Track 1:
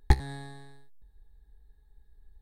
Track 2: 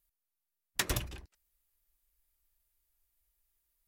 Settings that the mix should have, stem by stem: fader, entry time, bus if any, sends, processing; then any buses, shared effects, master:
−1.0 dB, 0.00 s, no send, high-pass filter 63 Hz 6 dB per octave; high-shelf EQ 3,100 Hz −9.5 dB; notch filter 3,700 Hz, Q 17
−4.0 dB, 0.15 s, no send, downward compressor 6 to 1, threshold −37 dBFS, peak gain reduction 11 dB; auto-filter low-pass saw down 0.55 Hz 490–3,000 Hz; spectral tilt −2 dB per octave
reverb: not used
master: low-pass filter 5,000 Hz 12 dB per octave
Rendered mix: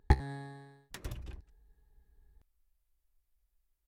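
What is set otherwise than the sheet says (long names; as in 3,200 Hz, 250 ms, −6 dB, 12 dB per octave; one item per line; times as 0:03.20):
stem 2: missing auto-filter low-pass saw down 0.55 Hz 490–3,000 Hz
master: missing low-pass filter 5,000 Hz 12 dB per octave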